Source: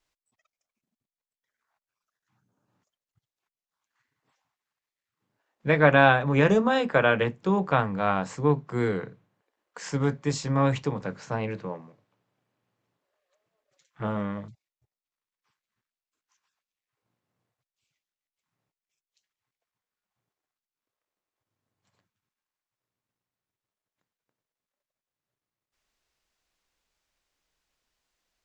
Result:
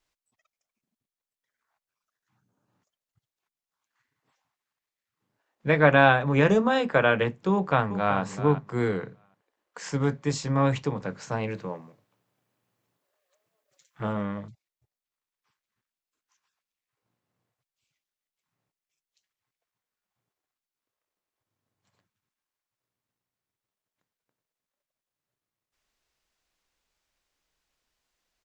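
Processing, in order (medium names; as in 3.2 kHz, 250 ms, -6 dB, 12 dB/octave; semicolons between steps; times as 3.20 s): 7.52–8.20 s: echo throw 380 ms, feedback 20%, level -11.5 dB; 11.20–14.13 s: treble shelf 7.3 kHz +11.5 dB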